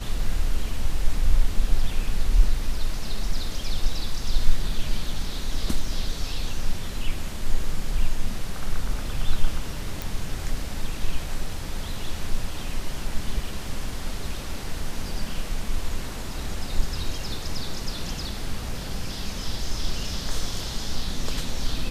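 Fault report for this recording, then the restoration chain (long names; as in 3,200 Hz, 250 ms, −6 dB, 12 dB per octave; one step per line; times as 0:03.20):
0:10.02: click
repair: click removal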